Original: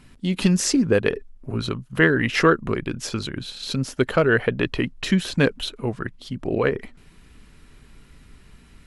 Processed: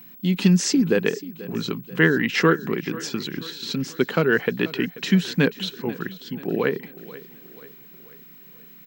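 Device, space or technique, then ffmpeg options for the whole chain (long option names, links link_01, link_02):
old television with a line whistle: -af "highpass=frequency=160:width=0.5412,highpass=frequency=160:width=1.3066,equalizer=frequency=170:width_type=q:width=4:gain=5,equalizer=frequency=610:width_type=q:width=4:gain=-8,equalizer=frequency=1200:width_type=q:width=4:gain=-4,lowpass=frequency=7600:width=0.5412,lowpass=frequency=7600:width=1.3066,aeval=exprs='val(0)+0.00708*sin(2*PI*15734*n/s)':channel_layout=same,aecho=1:1:486|972|1458|1944:0.126|0.0642|0.0327|0.0167"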